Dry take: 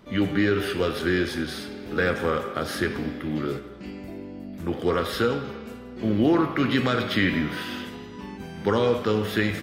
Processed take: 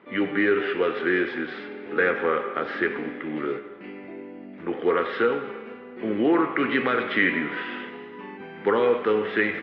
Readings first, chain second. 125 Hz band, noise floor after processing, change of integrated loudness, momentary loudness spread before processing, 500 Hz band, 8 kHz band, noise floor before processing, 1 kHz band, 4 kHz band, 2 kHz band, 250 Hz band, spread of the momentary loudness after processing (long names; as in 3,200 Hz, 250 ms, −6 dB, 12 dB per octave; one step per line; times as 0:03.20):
−12.5 dB, −42 dBFS, +0.5 dB, 16 LU, +2.0 dB, below −30 dB, −40 dBFS, +2.0 dB, −5.5 dB, +3.5 dB, −2.0 dB, 18 LU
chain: loudspeaker in its box 320–2,700 Hz, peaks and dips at 430 Hz +3 dB, 620 Hz −5 dB, 2,000 Hz +4 dB
level +2 dB